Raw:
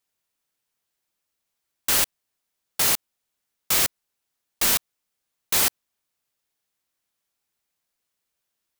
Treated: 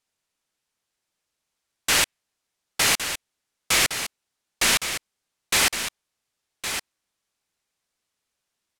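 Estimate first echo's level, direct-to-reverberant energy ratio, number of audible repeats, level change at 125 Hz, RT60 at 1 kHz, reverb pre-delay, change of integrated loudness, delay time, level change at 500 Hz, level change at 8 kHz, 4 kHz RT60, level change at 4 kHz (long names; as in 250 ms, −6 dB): −9.0 dB, no reverb audible, 1, +2.5 dB, no reverb audible, no reverb audible, −1.0 dB, 1,113 ms, +3.0 dB, +1.0 dB, no reverb audible, +4.5 dB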